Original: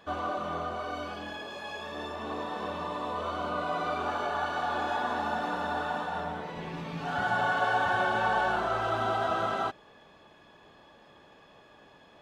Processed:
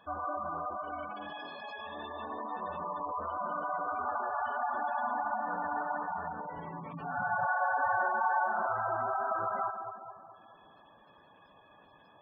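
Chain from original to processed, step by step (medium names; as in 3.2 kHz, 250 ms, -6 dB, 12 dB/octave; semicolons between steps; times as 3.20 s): fifteen-band graphic EQ 400 Hz -4 dB, 1 kHz +5 dB, 6.3 kHz +5 dB; two-band feedback delay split 1.2 kHz, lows 213 ms, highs 141 ms, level -8 dB; spectral gate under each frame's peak -15 dB strong; trim -5 dB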